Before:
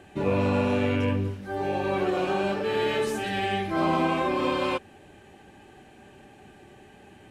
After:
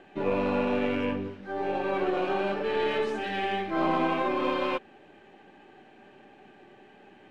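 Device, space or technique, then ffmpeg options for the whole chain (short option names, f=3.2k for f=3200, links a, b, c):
crystal radio: -af "highpass=210,lowpass=3.5k,aeval=exprs='if(lt(val(0),0),0.708*val(0),val(0))':c=same"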